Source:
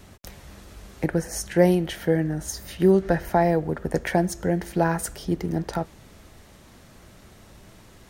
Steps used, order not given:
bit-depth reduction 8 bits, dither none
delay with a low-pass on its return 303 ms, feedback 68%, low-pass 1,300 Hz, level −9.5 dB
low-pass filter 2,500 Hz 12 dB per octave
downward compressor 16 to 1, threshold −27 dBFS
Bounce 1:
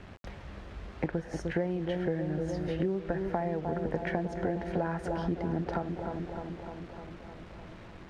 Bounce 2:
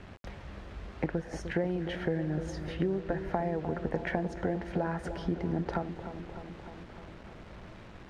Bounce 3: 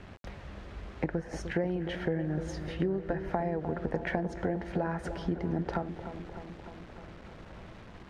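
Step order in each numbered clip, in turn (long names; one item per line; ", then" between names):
delay with a low-pass on its return, then downward compressor, then bit-depth reduction, then low-pass filter
downward compressor, then delay with a low-pass on its return, then bit-depth reduction, then low-pass filter
bit-depth reduction, then low-pass filter, then downward compressor, then delay with a low-pass on its return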